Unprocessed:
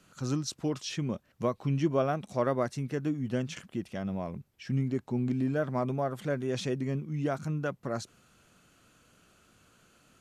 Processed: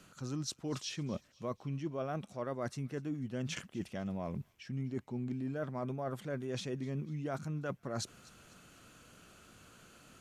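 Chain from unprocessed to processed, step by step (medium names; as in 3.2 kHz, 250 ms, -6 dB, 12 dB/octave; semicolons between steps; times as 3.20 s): reverse; compression 6:1, threshold -40 dBFS, peak gain reduction 16.5 dB; reverse; feedback echo behind a high-pass 247 ms, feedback 45%, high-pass 2 kHz, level -19.5 dB; trim +4 dB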